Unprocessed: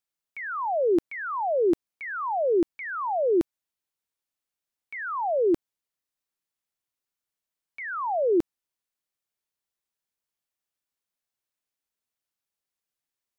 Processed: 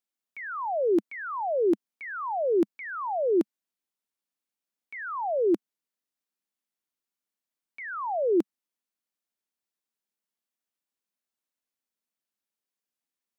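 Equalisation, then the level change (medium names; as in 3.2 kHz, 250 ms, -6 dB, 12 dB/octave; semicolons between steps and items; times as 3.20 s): resonant low shelf 160 Hz -9 dB, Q 3; -3.0 dB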